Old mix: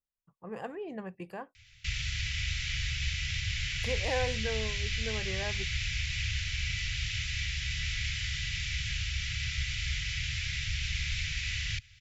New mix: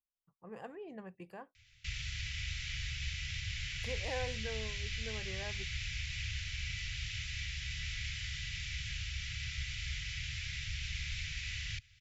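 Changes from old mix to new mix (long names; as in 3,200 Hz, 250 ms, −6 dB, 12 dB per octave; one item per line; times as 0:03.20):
speech −7.5 dB
background −6.5 dB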